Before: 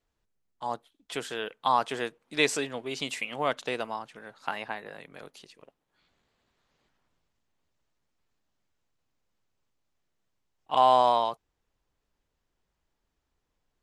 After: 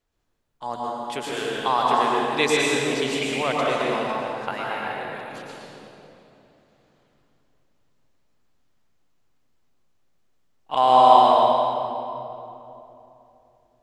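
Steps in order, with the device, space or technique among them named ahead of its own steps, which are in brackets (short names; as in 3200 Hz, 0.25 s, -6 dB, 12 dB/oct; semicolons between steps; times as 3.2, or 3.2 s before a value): stairwell (reverb RT60 3.0 s, pre-delay 0.102 s, DRR -4.5 dB); gain +1.5 dB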